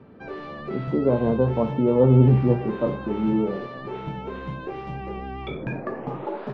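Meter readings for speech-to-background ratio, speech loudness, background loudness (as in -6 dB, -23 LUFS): 12.5 dB, -21.0 LUFS, -33.5 LUFS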